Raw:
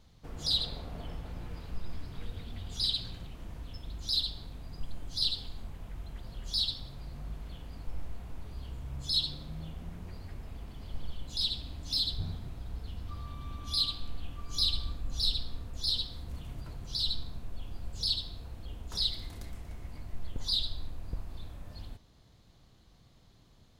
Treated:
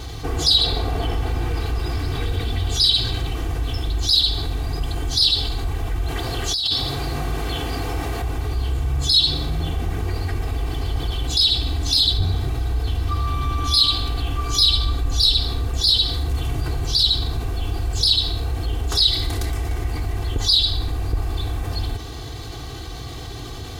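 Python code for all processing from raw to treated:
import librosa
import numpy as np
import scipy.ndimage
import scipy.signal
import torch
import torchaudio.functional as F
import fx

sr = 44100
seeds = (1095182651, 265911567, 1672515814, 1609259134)

y = fx.chain(x, sr, fx.highpass(hz=160.0, slope=6),
    fx.over_compress(threshold_db=-39.0, ratio=-1.0), at=(6.08, 8.22))
y = scipy.signal.sosfilt(scipy.signal.butter(2, 46.0, 'highpass', fs=sr, output='sos'), y)
y = y + 0.87 * np.pad(y, (int(2.6 * sr / 1000.0), 0))[:len(y)]
y = fx.env_flatten(y, sr, amount_pct=50)
y = y * 10.0 ** (8.5 / 20.0)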